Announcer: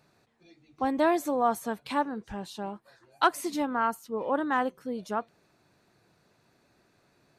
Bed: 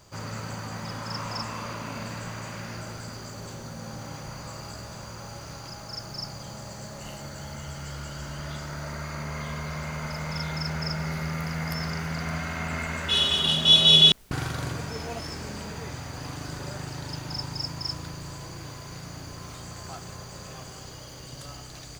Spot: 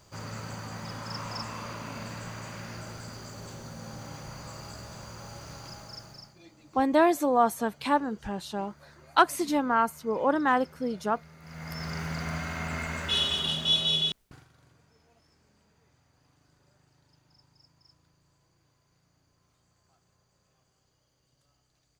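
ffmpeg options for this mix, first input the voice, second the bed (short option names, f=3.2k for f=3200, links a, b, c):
-filter_complex "[0:a]adelay=5950,volume=3dB[a];[1:a]volume=16dB,afade=t=out:st=5.72:d=0.64:silence=0.11885,afade=t=in:st=11.4:d=0.62:silence=0.105925,afade=t=out:st=12.99:d=1.47:silence=0.0421697[b];[a][b]amix=inputs=2:normalize=0"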